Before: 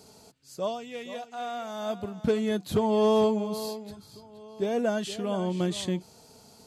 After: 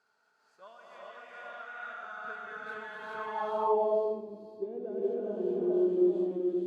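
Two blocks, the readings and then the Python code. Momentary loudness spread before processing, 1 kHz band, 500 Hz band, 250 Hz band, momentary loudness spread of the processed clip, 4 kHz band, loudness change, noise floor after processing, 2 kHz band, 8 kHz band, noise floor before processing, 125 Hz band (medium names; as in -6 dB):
16 LU, -2.0 dB, -3.0 dB, -4.0 dB, 19 LU, -19.0 dB, -3.0 dB, -72 dBFS, +0.5 dB, under -25 dB, -55 dBFS, under -15 dB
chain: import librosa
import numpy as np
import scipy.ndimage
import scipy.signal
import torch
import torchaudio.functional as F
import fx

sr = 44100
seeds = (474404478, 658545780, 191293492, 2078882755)

y = fx.echo_multitap(x, sr, ms=(429, 520), db=(-3.0, -3.5))
y = fx.filter_sweep_bandpass(y, sr, from_hz=1500.0, to_hz=350.0, start_s=3.12, end_s=3.83, q=7.5)
y = fx.rev_gated(y, sr, seeds[0], gate_ms=450, shape='rising', drr_db=-5.5)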